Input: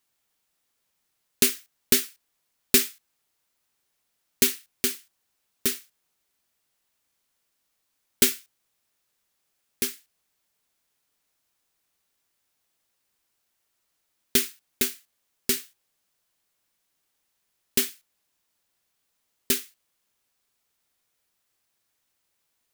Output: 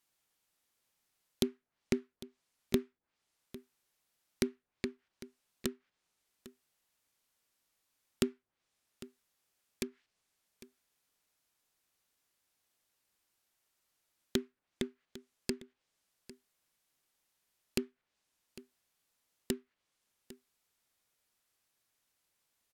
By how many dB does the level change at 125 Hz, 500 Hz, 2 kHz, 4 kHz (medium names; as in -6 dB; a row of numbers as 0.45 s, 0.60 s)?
-1.5 dB, -5.0 dB, -14.5 dB, -15.5 dB